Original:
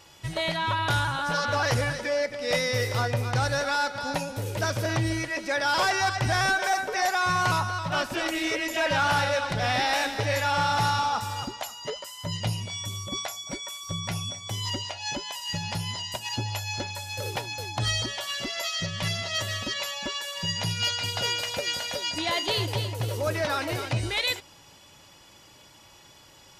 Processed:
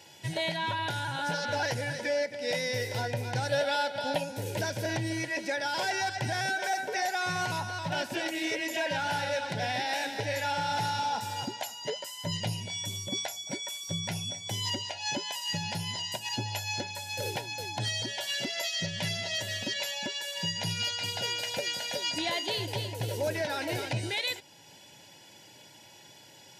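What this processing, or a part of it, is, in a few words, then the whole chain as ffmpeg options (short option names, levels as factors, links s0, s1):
PA system with an anti-feedback notch: -filter_complex "[0:a]highpass=f=110:w=0.5412,highpass=f=110:w=1.3066,asuperstop=centerf=1200:order=4:qfactor=3,alimiter=limit=0.0841:level=0:latency=1:release=441,asettb=1/sr,asplit=3[s0][s1][s2];[s0]atrim=end=3.494[s3];[s1]atrim=start=3.49:end=4.24,asetpts=PTS-STARTPTS,afade=t=in:d=0.004:c=qsin,afade=t=out:st=0.746:d=0.004:c=qsin,equalizer=f=630:t=o:w=0.33:g=11,equalizer=f=3150:t=o:w=0.33:g=11,equalizer=f=6300:t=o:w=0.33:g=-7[s4];[s2]atrim=start=4.236[s5];[s3][s4]acrossfade=d=0.004:c1=hsin:c2=qsin[s6];[s6][s5]acrossfade=d=0.004:c1=qsin:c2=hsin"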